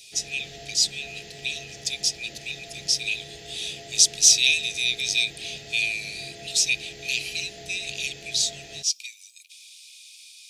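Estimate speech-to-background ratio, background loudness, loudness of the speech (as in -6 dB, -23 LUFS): 18.0 dB, -41.5 LUFS, -23.5 LUFS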